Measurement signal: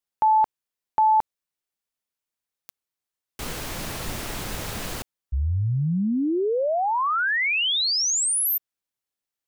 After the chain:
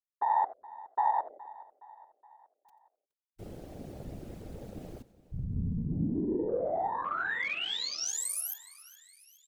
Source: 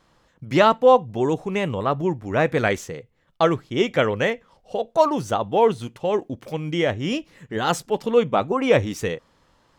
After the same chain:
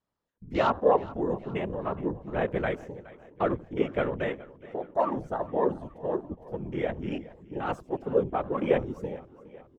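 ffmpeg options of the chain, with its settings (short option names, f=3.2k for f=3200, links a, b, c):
-filter_complex "[0:a]equalizer=f=290:w=0.34:g=4,asplit=2[a][b];[b]asplit=4[c][d][e][f];[c]adelay=88,afreqshift=-140,volume=-18.5dB[g];[d]adelay=176,afreqshift=-280,volume=-25.6dB[h];[e]adelay=264,afreqshift=-420,volume=-32.8dB[i];[f]adelay=352,afreqshift=-560,volume=-39.9dB[j];[g][h][i][j]amix=inputs=4:normalize=0[k];[a][k]amix=inputs=2:normalize=0,afftfilt=real='hypot(re,im)*cos(2*PI*random(0))':imag='hypot(re,im)*sin(2*PI*random(1))':win_size=512:overlap=0.75,afwtdn=0.0178,asplit=2[l][m];[m]aecho=0:1:418|836|1254|1672:0.106|0.0561|0.0298|0.0158[n];[l][n]amix=inputs=2:normalize=0,volume=-5.5dB"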